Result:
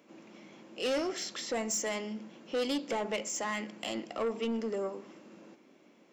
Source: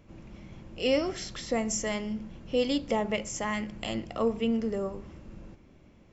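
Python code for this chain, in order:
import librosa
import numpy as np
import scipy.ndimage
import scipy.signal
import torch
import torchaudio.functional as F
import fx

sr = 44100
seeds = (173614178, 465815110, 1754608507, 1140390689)

y = scipy.signal.sosfilt(scipy.signal.butter(4, 240.0, 'highpass', fs=sr, output='sos'), x)
y = fx.high_shelf(y, sr, hz=4100.0, db=3.0)
y = 10.0 ** (-27.0 / 20.0) * np.tanh(y / 10.0 ** (-27.0 / 20.0))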